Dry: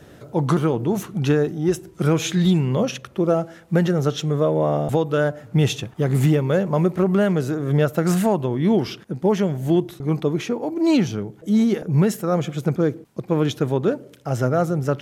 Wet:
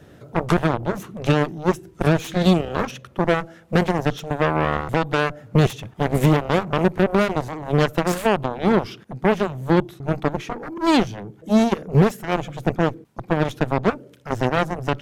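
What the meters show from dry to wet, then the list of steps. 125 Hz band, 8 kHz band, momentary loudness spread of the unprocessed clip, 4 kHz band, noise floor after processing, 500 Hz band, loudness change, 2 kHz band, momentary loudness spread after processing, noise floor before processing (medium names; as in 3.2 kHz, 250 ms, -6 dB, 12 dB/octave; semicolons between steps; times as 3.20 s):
-2.0 dB, -4.0 dB, 6 LU, +1.5 dB, -49 dBFS, -1.0 dB, -0.5 dB, +6.0 dB, 8 LU, -47 dBFS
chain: Chebyshev shaper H 7 -12 dB, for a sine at -6 dBFS; tone controls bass +2 dB, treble -3 dB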